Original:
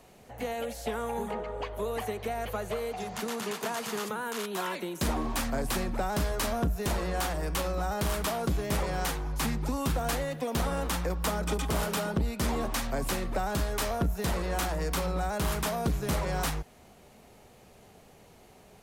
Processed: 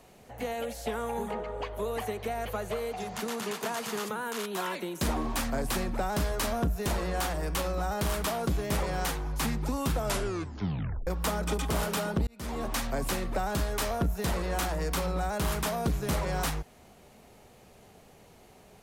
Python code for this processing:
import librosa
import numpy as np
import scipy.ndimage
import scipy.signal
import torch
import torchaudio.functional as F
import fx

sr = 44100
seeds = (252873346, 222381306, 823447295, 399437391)

y = fx.edit(x, sr, fx.tape_stop(start_s=9.95, length_s=1.12),
    fx.fade_in_span(start_s=12.27, length_s=0.46), tone=tone)